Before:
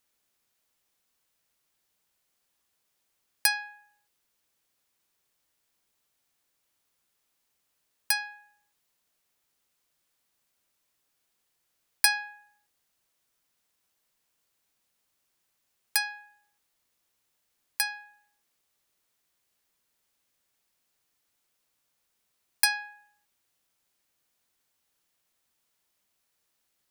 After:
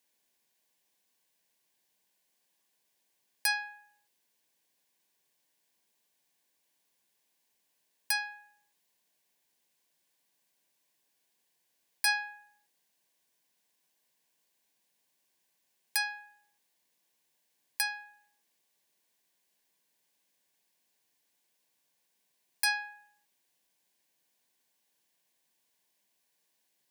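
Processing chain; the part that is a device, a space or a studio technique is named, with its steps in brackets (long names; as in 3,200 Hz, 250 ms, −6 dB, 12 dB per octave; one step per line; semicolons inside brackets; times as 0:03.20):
PA system with an anti-feedback notch (high-pass filter 140 Hz 24 dB per octave; Butterworth band-reject 1,300 Hz, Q 4.4; brickwall limiter −13.5 dBFS, peak gain reduction 10 dB)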